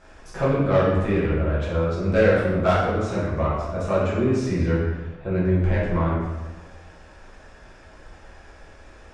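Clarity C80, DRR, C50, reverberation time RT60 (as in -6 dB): 3.0 dB, -9.0 dB, 0.5 dB, 1.2 s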